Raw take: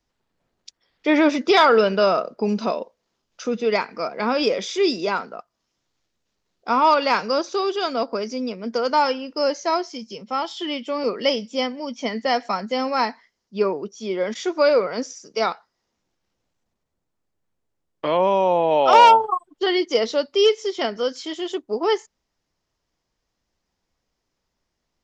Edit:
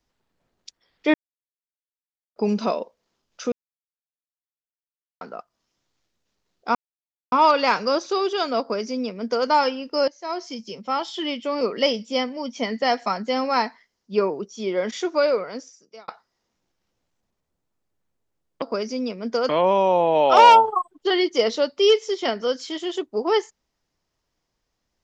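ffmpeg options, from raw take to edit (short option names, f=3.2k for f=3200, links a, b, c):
-filter_complex "[0:a]asplit=10[a][b][c][d][e][f][g][h][i][j];[a]atrim=end=1.14,asetpts=PTS-STARTPTS,afade=t=out:st=1.136:d=0.004:c=hsin[k];[b]atrim=start=1.14:end=2.36,asetpts=PTS-STARTPTS,volume=0[l];[c]atrim=start=2.36:end=3.52,asetpts=PTS-STARTPTS,afade=t=in:d=0.004:c=hsin,afade=t=out:st=1.156:d=0.004:c=hsin[m];[d]atrim=start=3.52:end=5.21,asetpts=PTS-STARTPTS,volume=0[n];[e]atrim=start=5.21:end=6.75,asetpts=PTS-STARTPTS,afade=t=in:d=0.004:c=hsin,afade=t=out:st=1.536:d=0.004:c=hsin,apad=pad_dur=0.57[o];[f]atrim=start=6.75:end=9.51,asetpts=PTS-STARTPTS,afade=t=in:d=0.004:c=hsin,afade=t=out:st=2.756:d=0.004:c=hsin:silence=0.125893[p];[g]atrim=start=9.51:end=15.51,asetpts=PTS-STARTPTS,afade=t=in:d=0.39:c=qua:silence=0.125893,afade=t=out:st=4.83:d=1.17[q];[h]atrim=start=15.51:end=18.052,asetpts=PTS-STARTPTS,afade=t=in:d=0.004:c=hsin[r];[i]atrim=start=8.028:end=8.902[s];[j]atrim=start=18.048[t];[k][l][m][n][o][p][q][r]concat=n=8:v=0:a=1[u];[u][s]acrossfade=d=0.004:c1=hsin:c2=hsin[v];[v][t]acrossfade=d=0.004:c1=hsin:c2=hsin"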